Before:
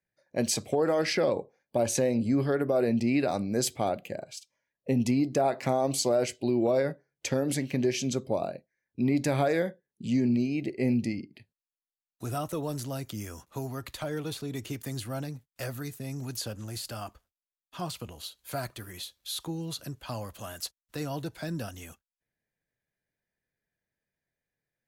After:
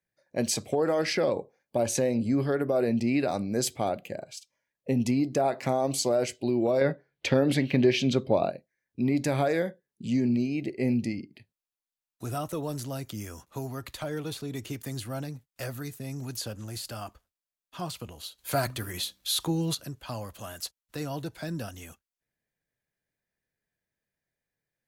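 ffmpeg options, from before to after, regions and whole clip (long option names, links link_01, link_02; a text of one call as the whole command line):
ffmpeg -i in.wav -filter_complex "[0:a]asettb=1/sr,asplit=3[link_01][link_02][link_03];[link_01]atrim=end=6.814[link_04];[link_02]atrim=start=6.81:end=8.5,asetpts=PTS-STARTPTS,afade=type=in:duration=0.004:curve=qsin,afade=type=out:start_time=1.686:duration=0.004:curve=qsin,acontrast=28,highshelf=frequency=5000:width_type=q:width=1.5:gain=-10[link_05];[link_03]atrim=start=8.496[link_06];[link_04][link_05]acrossfade=duration=0.004:curve1=hsin:curve2=qsin[link_07];[link_07][link_06]acrossfade=duration=0.004:curve1=qsin:curve2=hsin,asettb=1/sr,asplit=3[link_08][link_09][link_10];[link_08]atrim=end=18.384[link_11];[link_09]atrim=start=18.38:end=19.75,asetpts=PTS-STARTPTS,afade=type=in:duration=0.004:curve=qsin,afade=type=out:start_time=1.366:duration=0.004:curve=qsin,bandreject=frequency=63.39:width_type=h:width=4,bandreject=frequency=126.78:width_type=h:width=4,bandreject=frequency=190.17:width_type=h:width=4,bandreject=frequency=253.56:width_type=h:width=4,bandreject=frequency=316.95:width_type=h:width=4,acontrast=87[link_12];[link_10]atrim=start=19.746[link_13];[link_11][link_12]acrossfade=duration=0.004:curve1=hsin:curve2=qsin[link_14];[link_14][link_13]acrossfade=duration=0.004:curve1=qsin:curve2=hsin" out.wav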